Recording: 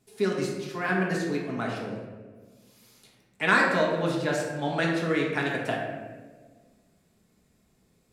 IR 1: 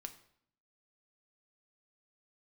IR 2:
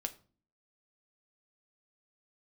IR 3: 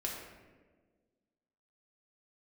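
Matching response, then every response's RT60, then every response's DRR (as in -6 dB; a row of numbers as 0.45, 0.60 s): 3; 0.65, 0.40, 1.5 s; 6.5, 6.5, -3.0 dB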